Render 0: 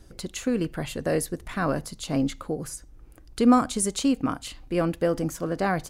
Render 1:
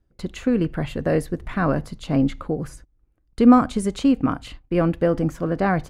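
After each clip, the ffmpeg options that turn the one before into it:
-af "agate=range=0.0708:threshold=0.00891:ratio=16:detection=peak,bass=f=250:g=4,treble=f=4000:g=-14,volume=1.5"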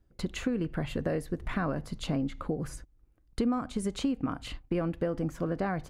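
-af "acompressor=threshold=0.0398:ratio=5"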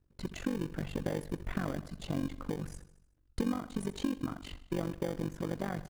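-filter_complex "[0:a]aecho=1:1:75|150|225|300|375:0.168|0.094|0.0526|0.0295|0.0165,tremolo=f=47:d=0.919,asplit=2[s0][s1];[s1]acrusher=samples=33:mix=1:aa=0.000001,volume=0.501[s2];[s0][s2]amix=inputs=2:normalize=0,volume=0.668"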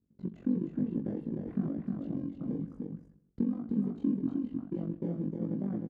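-af "bandpass=f=230:t=q:w=2.3:csg=0,flanger=delay=17.5:depth=7:speed=1.1,aecho=1:1:309:0.668,volume=2.66"

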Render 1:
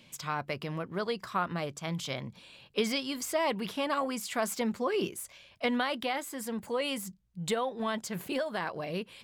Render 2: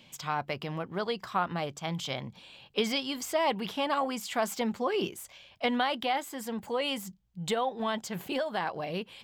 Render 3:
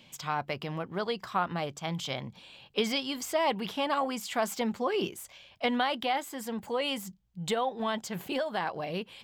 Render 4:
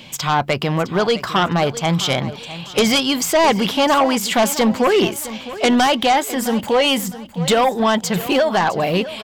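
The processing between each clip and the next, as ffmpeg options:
-af "equalizer=f=800:t=o:w=0.33:g=7,equalizer=f=3150:t=o:w=0.33:g=4,equalizer=f=10000:t=o:w=0.33:g=-7"
-af anull
-af "aeval=exprs='0.2*sin(PI/2*2.82*val(0)/0.2)':c=same,aecho=1:1:660|1320|1980:0.178|0.0569|0.0182,volume=1.58"

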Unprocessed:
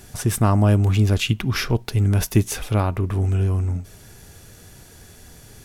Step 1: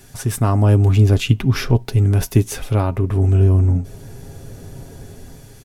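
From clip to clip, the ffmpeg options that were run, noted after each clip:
-filter_complex "[0:a]aecho=1:1:7.4:0.39,acrossover=split=800|1100[s0][s1][s2];[s0]dynaudnorm=f=260:g=5:m=4.47[s3];[s3][s1][s2]amix=inputs=3:normalize=0,volume=0.841"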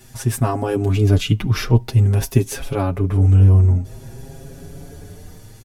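-filter_complex "[0:a]asplit=2[s0][s1];[s1]adelay=5.9,afreqshift=0.52[s2];[s0][s2]amix=inputs=2:normalize=1,volume=1.33"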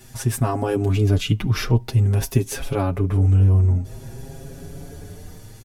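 -af "acompressor=threshold=0.112:ratio=1.5"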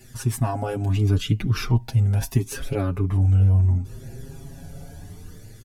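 -af "flanger=delay=0.4:depth=1.1:regen=-22:speed=0.73:shape=triangular"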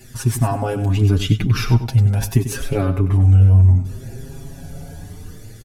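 -af "aecho=1:1:96|192|288:0.282|0.062|0.0136,volume=1.78"

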